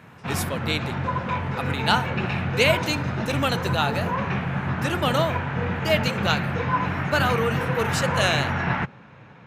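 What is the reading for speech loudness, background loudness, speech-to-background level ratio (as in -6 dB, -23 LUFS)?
-26.0 LUFS, -26.0 LUFS, 0.0 dB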